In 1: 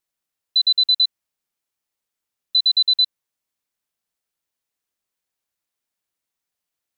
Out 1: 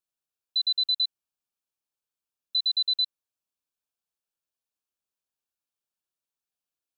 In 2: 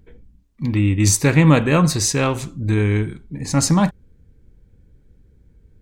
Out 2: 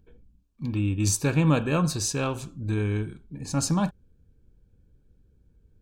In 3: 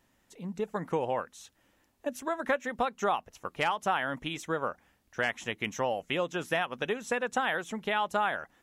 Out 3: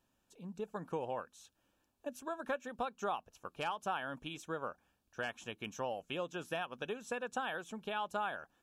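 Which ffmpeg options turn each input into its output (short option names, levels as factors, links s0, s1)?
-af "asuperstop=centerf=2000:order=4:qfactor=4.1,volume=0.376"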